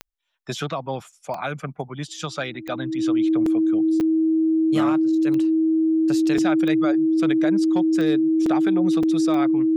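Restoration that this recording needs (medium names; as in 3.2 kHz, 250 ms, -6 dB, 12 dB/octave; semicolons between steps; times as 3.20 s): de-click; band-stop 320 Hz, Q 30; interpolate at 1.12/3.46/4.00/6.38/8.46/9.03 s, 3.9 ms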